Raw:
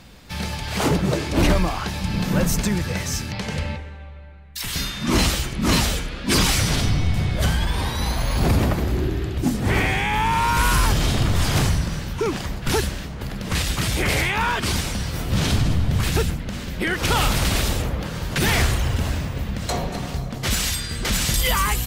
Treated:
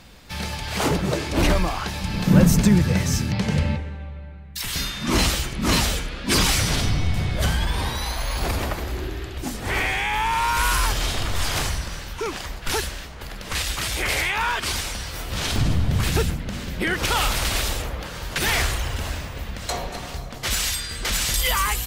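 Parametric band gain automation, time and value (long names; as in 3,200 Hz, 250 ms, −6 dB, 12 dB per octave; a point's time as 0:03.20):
parametric band 160 Hz 2.4 octaves
−3.5 dB
from 0:02.27 +7.5 dB
from 0:04.61 −3 dB
from 0:07.98 −13 dB
from 0:15.56 −1 dB
from 0:17.05 −10.5 dB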